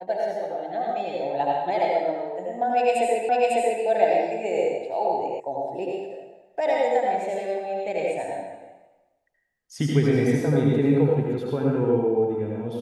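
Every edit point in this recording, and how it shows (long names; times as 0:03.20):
0:03.29: the same again, the last 0.55 s
0:05.40: cut off before it has died away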